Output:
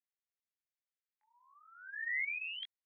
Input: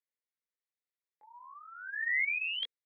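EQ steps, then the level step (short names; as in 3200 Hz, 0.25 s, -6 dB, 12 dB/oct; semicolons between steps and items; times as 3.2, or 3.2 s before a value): ladder high-pass 1300 Hz, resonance 25%; air absorption 180 m; 0.0 dB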